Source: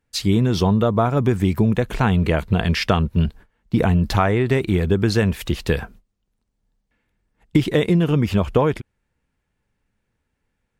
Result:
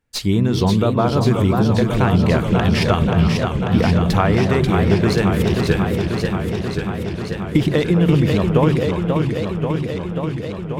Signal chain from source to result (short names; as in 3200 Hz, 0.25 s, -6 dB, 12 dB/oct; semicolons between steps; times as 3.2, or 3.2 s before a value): tracing distortion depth 0.022 ms; delay with a stepping band-pass 0.11 s, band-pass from 160 Hz, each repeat 1.4 oct, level -3 dB; warbling echo 0.537 s, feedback 77%, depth 160 cents, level -5 dB